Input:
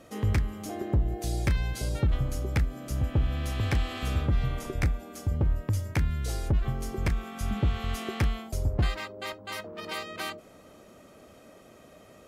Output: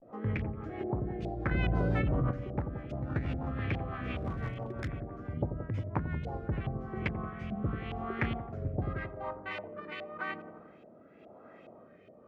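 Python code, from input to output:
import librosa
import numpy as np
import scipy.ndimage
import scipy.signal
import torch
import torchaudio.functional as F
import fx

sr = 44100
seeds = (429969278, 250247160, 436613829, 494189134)

y = scipy.signal.sosfilt(scipy.signal.butter(2, 110.0, 'highpass', fs=sr, output='sos'), x)
y = fx.high_shelf(y, sr, hz=2300.0, db=-5.5)
y = fx.sample_hold(y, sr, seeds[0], rate_hz=2000.0, jitter_pct=0, at=(3.01, 3.47))
y = fx.vibrato(y, sr, rate_hz=0.38, depth_cents=64.0)
y = fx.filter_lfo_lowpass(y, sr, shape='saw_up', hz=2.4, low_hz=670.0, high_hz=2900.0, q=2.9)
y = fx.echo_wet_lowpass(y, sr, ms=88, feedback_pct=63, hz=590.0, wet_db=-5.0)
y = fx.overload_stage(y, sr, gain_db=27.0, at=(4.17, 4.88))
y = fx.rotary_switch(y, sr, hz=6.0, then_hz=0.9, switch_at_s=6.04)
y = fx.env_flatten(y, sr, amount_pct=100, at=(1.51, 2.31))
y = y * librosa.db_to_amplitude(-2.5)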